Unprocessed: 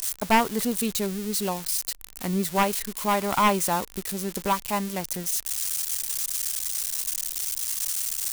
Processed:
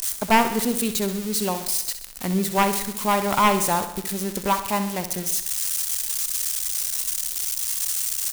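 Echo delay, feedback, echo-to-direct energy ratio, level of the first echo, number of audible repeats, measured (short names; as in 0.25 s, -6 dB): 65 ms, 56%, -9.0 dB, -10.5 dB, 5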